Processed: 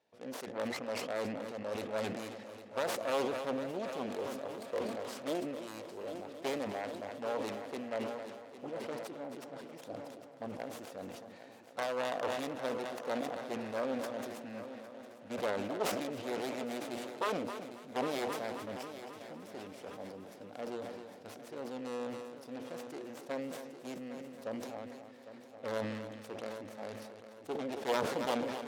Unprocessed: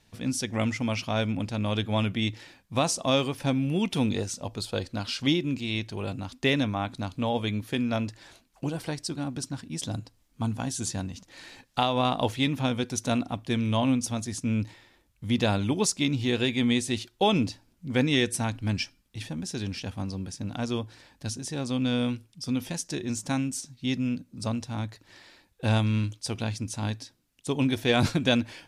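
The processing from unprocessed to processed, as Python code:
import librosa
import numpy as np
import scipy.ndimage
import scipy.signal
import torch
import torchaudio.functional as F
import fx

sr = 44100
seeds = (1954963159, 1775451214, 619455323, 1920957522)

p1 = fx.self_delay(x, sr, depth_ms=0.76)
p2 = fx.bandpass_q(p1, sr, hz=530.0, q=2.2)
p3 = fx.tilt_eq(p2, sr, slope=3.0)
p4 = p3 + fx.echo_heads(p3, sr, ms=268, heads='first and third', feedback_pct=60, wet_db=-13.0, dry=0)
y = fx.sustainer(p4, sr, db_per_s=34.0)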